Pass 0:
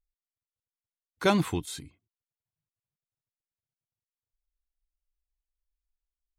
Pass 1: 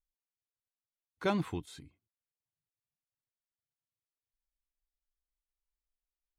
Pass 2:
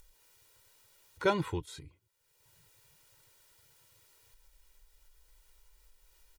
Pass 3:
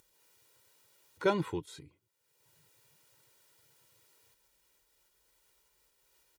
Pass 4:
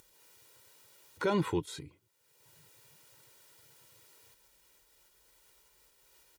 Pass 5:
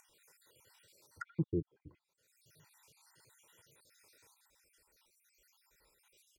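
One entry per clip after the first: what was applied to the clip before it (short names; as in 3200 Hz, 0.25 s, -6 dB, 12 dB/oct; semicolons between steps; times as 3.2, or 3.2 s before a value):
high shelf 4800 Hz -10.5 dB; gain -7 dB
comb 2.1 ms, depth 72%; upward compressor, threshold -43 dBFS; gain +1.5 dB
HPF 210 Hz 12 dB/oct; low shelf 280 Hz +10.5 dB; gain -2.5 dB
limiter -26.5 dBFS, peak gain reduction 10.5 dB; gain +6 dB
random spectral dropouts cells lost 61%; treble ducked by the level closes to 350 Hz, closed at -37 dBFS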